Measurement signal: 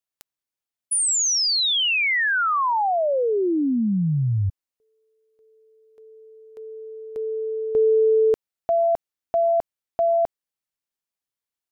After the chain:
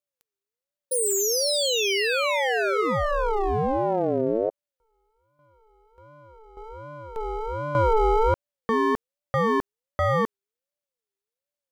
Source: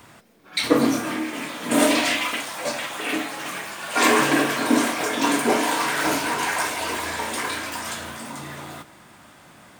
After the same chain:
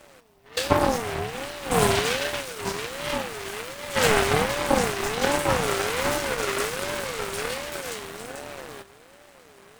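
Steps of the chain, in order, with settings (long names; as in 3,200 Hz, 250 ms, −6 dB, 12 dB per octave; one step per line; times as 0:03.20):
half-wave rectification
ring modulator whose carrier an LFO sweeps 490 Hz, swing 20%, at 1.3 Hz
level +3.5 dB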